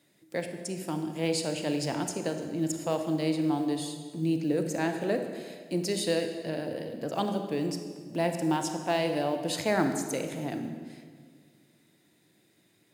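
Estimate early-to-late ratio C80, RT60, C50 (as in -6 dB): 8.5 dB, 1.8 s, 7.0 dB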